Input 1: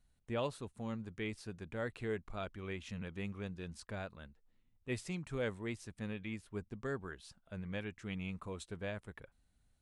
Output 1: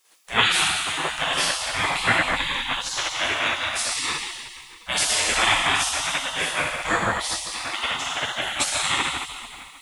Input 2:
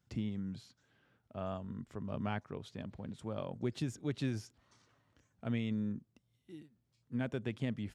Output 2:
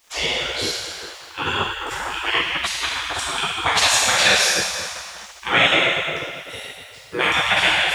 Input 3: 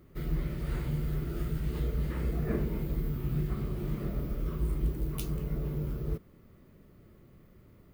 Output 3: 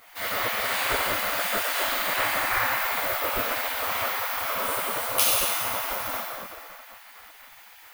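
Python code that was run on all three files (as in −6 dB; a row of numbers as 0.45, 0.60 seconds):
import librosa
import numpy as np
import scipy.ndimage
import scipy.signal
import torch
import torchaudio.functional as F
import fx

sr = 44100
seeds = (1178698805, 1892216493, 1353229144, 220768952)

y = fx.highpass(x, sr, hz=200.0, slope=6)
y = fx.echo_heads(y, sr, ms=77, heads='all three', feedback_pct=64, wet_db=-23.5)
y = fx.rev_plate(y, sr, seeds[0], rt60_s=1.9, hf_ratio=0.9, predelay_ms=0, drr_db=-8.0)
y = fx.spec_gate(y, sr, threshold_db=-20, keep='weak')
y = librosa.util.normalize(y) * 10.0 ** (-3 / 20.0)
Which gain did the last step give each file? +25.0, +28.0, +17.0 decibels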